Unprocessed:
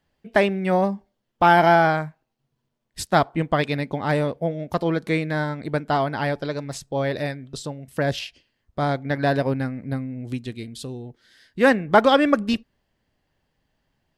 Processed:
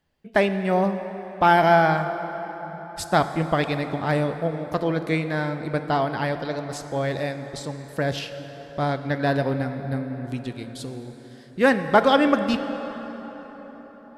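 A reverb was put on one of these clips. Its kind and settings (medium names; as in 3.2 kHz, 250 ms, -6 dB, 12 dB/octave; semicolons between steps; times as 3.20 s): plate-style reverb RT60 5 s, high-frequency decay 0.55×, DRR 8.5 dB; trim -1.5 dB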